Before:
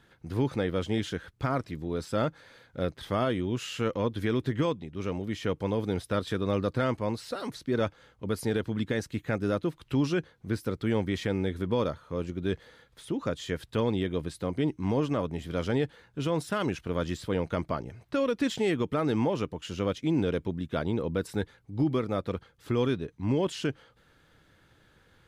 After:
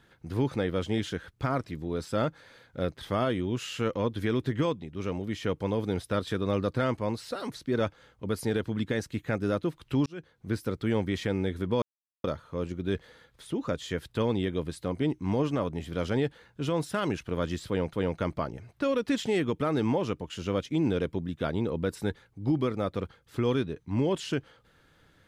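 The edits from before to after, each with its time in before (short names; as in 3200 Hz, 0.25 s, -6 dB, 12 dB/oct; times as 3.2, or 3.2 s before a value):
10.06–10.5 fade in
11.82 insert silence 0.42 s
17.25–17.51 loop, 2 plays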